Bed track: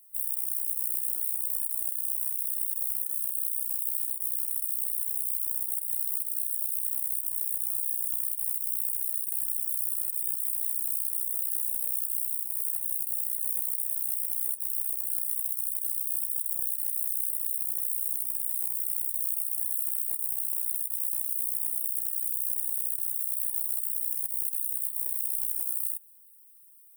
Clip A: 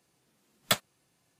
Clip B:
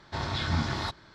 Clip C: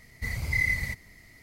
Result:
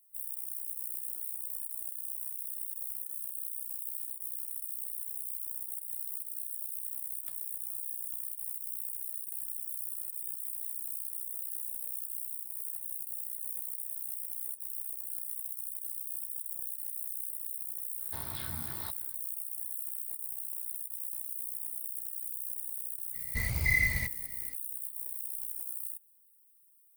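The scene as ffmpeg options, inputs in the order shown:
ffmpeg -i bed.wav -i cue0.wav -i cue1.wav -i cue2.wav -filter_complex "[0:a]volume=-8.5dB[link_01];[1:a]acompressor=threshold=-37dB:ratio=6:attack=3.2:release=140:knee=1:detection=peak[link_02];[2:a]alimiter=limit=-24dB:level=0:latency=1:release=356[link_03];[link_02]atrim=end=1.39,asetpts=PTS-STARTPTS,volume=-17.5dB,afade=type=in:duration=0.004:curve=hsin,afade=type=out:start_time=1.386:duration=0.004:curve=hsin,adelay=6570[link_04];[link_03]atrim=end=1.14,asetpts=PTS-STARTPTS,volume=-9.5dB,afade=type=in:duration=0.004:curve=hsin,afade=type=out:start_time=1.136:duration=0.004:curve=hsin,adelay=18000[link_05];[3:a]atrim=end=1.42,asetpts=PTS-STARTPTS,volume=-1dB,afade=type=in:duration=0.02,afade=type=out:start_time=1.4:duration=0.02,adelay=23130[link_06];[link_01][link_04][link_05][link_06]amix=inputs=4:normalize=0" out.wav

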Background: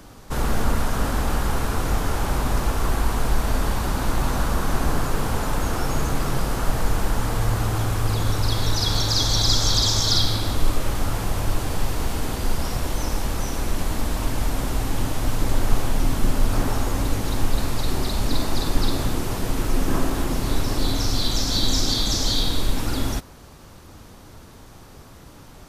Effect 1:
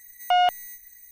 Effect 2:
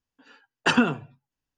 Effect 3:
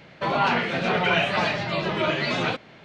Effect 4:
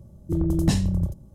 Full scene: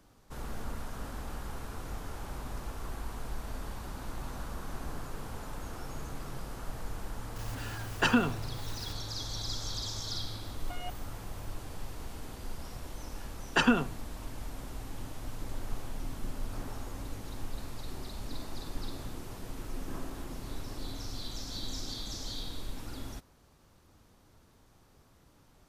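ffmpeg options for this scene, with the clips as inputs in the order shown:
ffmpeg -i bed.wav -i cue0.wav -i cue1.wav -filter_complex "[2:a]asplit=2[link_01][link_02];[0:a]volume=-17.5dB[link_03];[link_01]aeval=exprs='val(0)+0.5*0.0211*sgn(val(0))':channel_layout=same[link_04];[1:a]asplit=2[link_05][link_06];[link_06]adelay=9,afreqshift=-1.9[link_07];[link_05][link_07]amix=inputs=2:normalize=1[link_08];[link_04]atrim=end=1.57,asetpts=PTS-STARTPTS,volume=-6dB,afade=type=in:duration=0.004:curve=hsin,afade=type=out:start_time=1.566:duration=0.004:curve=hsin,adelay=7360[link_09];[link_08]atrim=end=1.11,asetpts=PTS-STARTPTS,volume=-16dB,afade=type=in:duration=0.004:curve=hsin,afade=type=out:start_time=1.106:duration=0.004:curve=hsin,adelay=10400[link_10];[link_02]atrim=end=1.57,asetpts=PTS-STARTPTS,volume=-4.5dB,afade=type=in:duration=0.004:curve=hsin,afade=type=out:start_time=1.566:duration=0.004:curve=hsin,adelay=12900[link_11];[link_03][link_09][link_10][link_11]amix=inputs=4:normalize=0" out.wav

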